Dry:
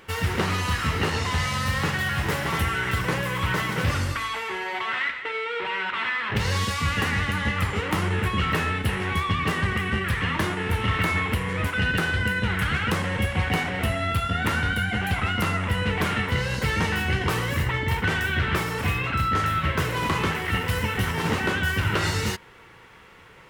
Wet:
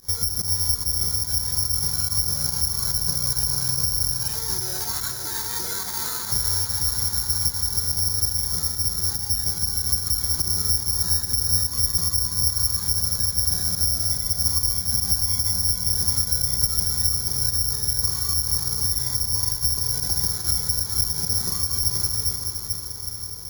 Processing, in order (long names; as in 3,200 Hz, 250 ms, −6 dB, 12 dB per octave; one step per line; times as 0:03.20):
RIAA equalisation playback
downward compressor, threshold −21 dBFS, peak gain reduction 14 dB
formants moved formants −5 semitones
fake sidechain pumping 144 BPM, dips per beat 1, −18 dB, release 66 ms
on a send: feedback delay with all-pass diffusion 455 ms, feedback 68%, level −6 dB
on the sum: bad sample-rate conversion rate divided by 8×, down filtered, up zero stuff
level −9.5 dB